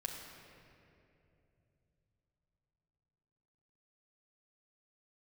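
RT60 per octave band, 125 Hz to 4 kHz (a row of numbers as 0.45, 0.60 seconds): 5.1, 3.9, 3.3, 2.4, 2.3, 1.7 seconds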